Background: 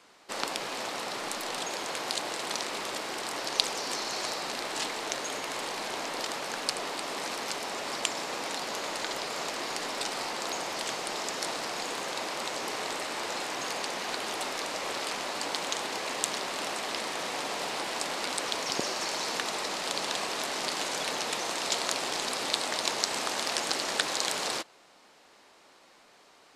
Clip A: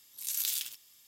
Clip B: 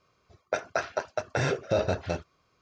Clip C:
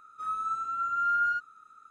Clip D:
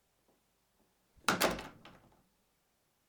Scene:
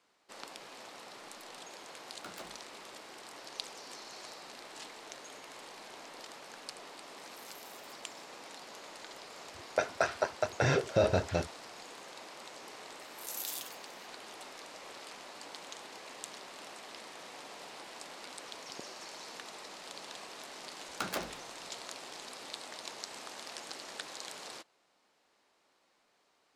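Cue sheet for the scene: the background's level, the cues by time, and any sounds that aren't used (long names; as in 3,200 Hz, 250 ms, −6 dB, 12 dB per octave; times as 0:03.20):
background −14.5 dB
0:00.96: mix in D −18 dB
0:07.18: mix in A −13.5 dB + downward compressor, threshold −39 dBFS
0:09.25: mix in B −1 dB
0:13.00: mix in A −7.5 dB
0:19.72: mix in D −6.5 dB
not used: C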